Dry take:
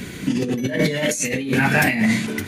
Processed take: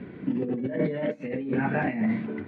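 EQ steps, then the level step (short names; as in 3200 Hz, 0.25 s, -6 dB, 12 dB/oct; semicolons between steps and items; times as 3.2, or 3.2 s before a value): band-pass 450 Hz, Q 0.51; air absorption 420 m; -4.0 dB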